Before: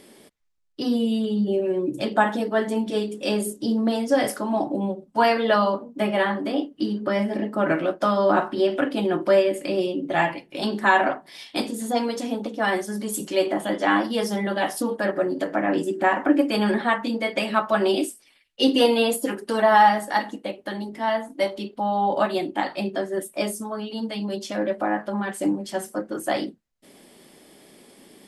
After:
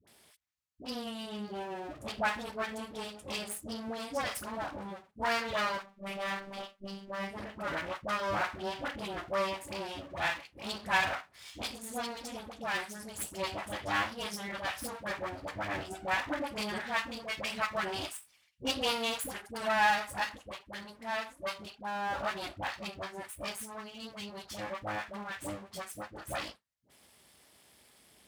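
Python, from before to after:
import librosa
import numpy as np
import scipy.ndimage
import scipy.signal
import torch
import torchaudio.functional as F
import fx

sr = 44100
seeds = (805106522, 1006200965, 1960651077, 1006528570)

y = np.maximum(x, 0.0)
y = scipy.signal.sosfilt(scipy.signal.butter(4, 60.0, 'highpass', fs=sr, output='sos'), y)
y = fx.robotise(y, sr, hz=196.0, at=(5.77, 7.3))
y = fx.peak_eq(y, sr, hz=310.0, db=-11.5, octaves=2.1)
y = fx.dispersion(y, sr, late='highs', ms=74.0, hz=680.0)
y = y * librosa.db_to_amplitude(-3.5)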